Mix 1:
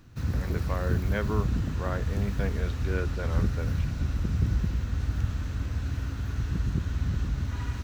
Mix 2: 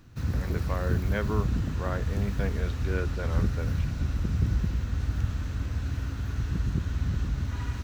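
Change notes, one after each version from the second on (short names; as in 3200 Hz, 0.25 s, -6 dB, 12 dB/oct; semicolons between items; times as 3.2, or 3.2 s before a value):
none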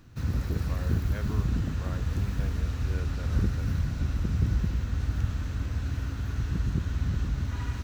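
speech -10.0 dB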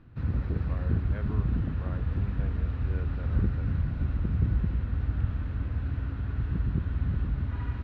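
master: add air absorption 430 m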